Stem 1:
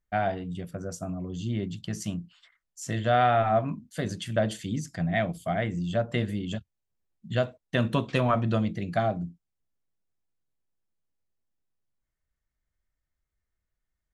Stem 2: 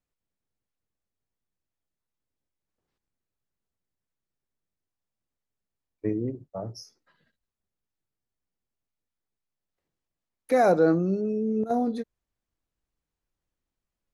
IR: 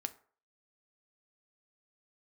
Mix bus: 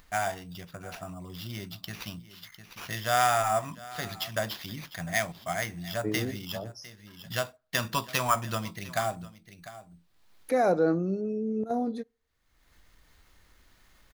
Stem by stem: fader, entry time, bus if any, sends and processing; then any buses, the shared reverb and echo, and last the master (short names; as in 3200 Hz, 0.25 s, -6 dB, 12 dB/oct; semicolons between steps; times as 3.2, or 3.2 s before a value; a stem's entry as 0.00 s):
-6.0 dB, 0.00 s, send -14.5 dB, echo send -18 dB, graphic EQ 125/250/500/1000/2000/4000/8000 Hz -3/-6/-5/+8/+4/+11/-4 dB; sample-rate reducer 8400 Hz, jitter 0%
-4.5 dB, 0.00 s, send -19 dB, no echo send, dry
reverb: on, RT60 0.45 s, pre-delay 4 ms
echo: echo 0.703 s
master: upward compressor, threshold -38 dBFS